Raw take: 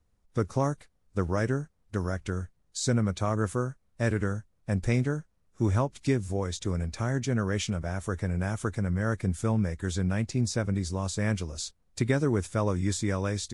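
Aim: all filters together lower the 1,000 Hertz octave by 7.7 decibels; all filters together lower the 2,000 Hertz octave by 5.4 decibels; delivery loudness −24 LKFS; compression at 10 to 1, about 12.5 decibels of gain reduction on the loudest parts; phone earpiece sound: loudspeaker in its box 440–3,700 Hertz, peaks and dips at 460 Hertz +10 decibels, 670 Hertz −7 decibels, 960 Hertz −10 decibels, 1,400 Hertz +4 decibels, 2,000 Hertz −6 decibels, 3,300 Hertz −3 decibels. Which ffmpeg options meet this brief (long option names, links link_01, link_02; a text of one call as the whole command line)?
ffmpeg -i in.wav -af "equalizer=frequency=1000:width_type=o:gain=-5.5,equalizer=frequency=2000:width_type=o:gain=-4,acompressor=threshold=-34dB:ratio=10,highpass=440,equalizer=frequency=460:width_type=q:width=4:gain=10,equalizer=frequency=670:width_type=q:width=4:gain=-7,equalizer=frequency=960:width_type=q:width=4:gain=-10,equalizer=frequency=1400:width_type=q:width=4:gain=4,equalizer=frequency=2000:width_type=q:width=4:gain=-6,equalizer=frequency=3300:width_type=q:width=4:gain=-3,lowpass=frequency=3700:width=0.5412,lowpass=frequency=3700:width=1.3066,volume=22dB" out.wav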